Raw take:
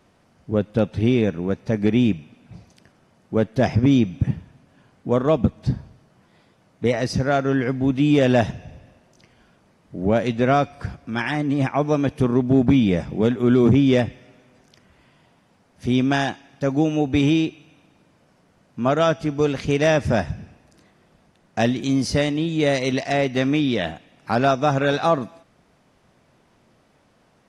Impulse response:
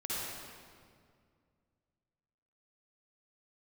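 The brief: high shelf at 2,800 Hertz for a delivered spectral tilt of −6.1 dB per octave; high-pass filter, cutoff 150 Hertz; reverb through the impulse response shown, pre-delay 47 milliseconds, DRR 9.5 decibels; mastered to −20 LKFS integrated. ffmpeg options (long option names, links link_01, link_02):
-filter_complex "[0:a]highpass=150,highshelf=frequency=2800:gain=-5.5,asplit=2[link_01][link_02];[1:a]atrim=start_sample=2205,adelay=47[link_03];[link_02][link_03]afir=irnorm=-1:irlink=0,volume=-14dB[link_04];[link_01][link_04]amix=inputs=2:normalize=0,volume=1.5dB"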